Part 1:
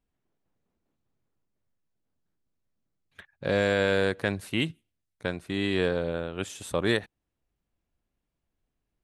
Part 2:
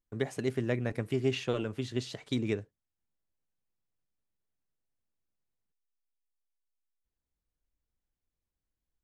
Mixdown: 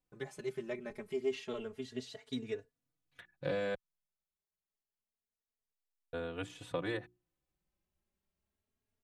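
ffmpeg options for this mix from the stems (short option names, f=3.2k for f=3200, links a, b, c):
-filter_complex "[0:a]highpass=58,acrossover=split=1900|4000[a][b][c];[a]acompressor=threshold=-27dB:ratio=4[d];[b]acompressor=threshold=-44dB:ratio=4[e];[c]acompressor=threshold=-59dB:ratio=4[f];[d][e][f]amix=inputs=3:normalize=0,bandreject=f=60:t=h:w=6,bandreject=f=120:t=h:w=6,bandreject=f=180:t=h:w=6,bandreject=f=240:t=h:w=6,bandreject=f=300:t=h:w=6,bandreject=f=360:t=h:w=6,volume=-2dB,asplit=3[g][h][i];[g]atrim=end=3.75,asetpts=PTS-STARTPTS,afade=t=out:st=3.746:d=0.004:c=hsin[j];[h]atrim=start=3.75:end=6.13,asetpts=PTS-STARTPTS,volume=0[k];[i]atrim=start=6.13,asetpts=PTS-STARTPTS,afade=t=in:d=0.004:c=hsin[l];[j][k][l]concat=n=3:v=0:a=1[m];[1:a]equalizer=f=210:w=4.7:g=-9,aecho=1:1:4.7:0.72,volume=-6.5dB[n];[m][n]amix=inputs=2:normalize=0,asplit=2[o][p];[p]adelay=3.5,afreqshift=0.28[q];[o][q]amix=inputs=2:normalize=1"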